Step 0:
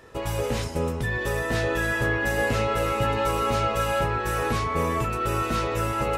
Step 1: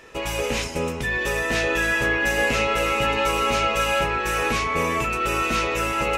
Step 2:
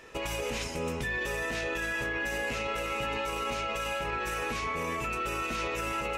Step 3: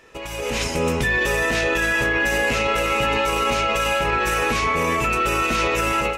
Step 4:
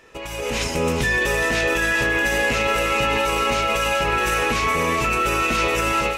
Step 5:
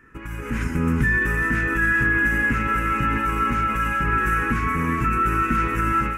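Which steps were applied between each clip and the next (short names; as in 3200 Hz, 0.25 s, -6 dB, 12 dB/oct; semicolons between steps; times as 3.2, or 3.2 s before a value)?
fifteen-band EQ 100 Hz -11 dB, 2500 Hz +10 dB, 6300 Hz +6 dB; gain +1.5 dB
limiter -20.5 dBFS, peak gain reduction 10 dB; gain -4 dB
AGC gain up to 12 dB
thin delay 0.422 s, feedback 54%, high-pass 2600 Hz, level -6.5 dB
EQ curve 290 Hz 0 dB, 620 Hz -26 dB, 1500 Hz +1 dB, 3900 Hz -29 dB, 11000 Hz -13 dB; gain +4.5 dB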